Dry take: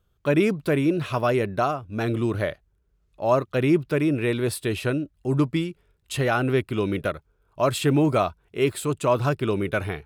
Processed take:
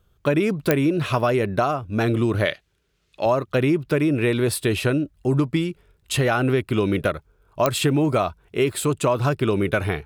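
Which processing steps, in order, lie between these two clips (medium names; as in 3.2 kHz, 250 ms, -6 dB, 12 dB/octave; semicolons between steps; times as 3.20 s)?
2.45–3.26 s: frequency weighting D; compression, threshold -23 dBFS, peak gain reduction 8.5 dB; clicks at 0.71/7.66 s, -10 dBFS; trim +6.5 dB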